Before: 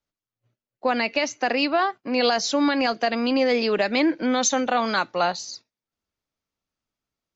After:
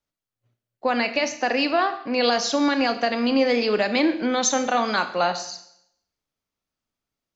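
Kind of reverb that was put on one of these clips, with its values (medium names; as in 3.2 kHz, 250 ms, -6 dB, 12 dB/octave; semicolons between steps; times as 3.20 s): Schroeder reverb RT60 0.72 s, combs from 26 ms, DRR 9 dB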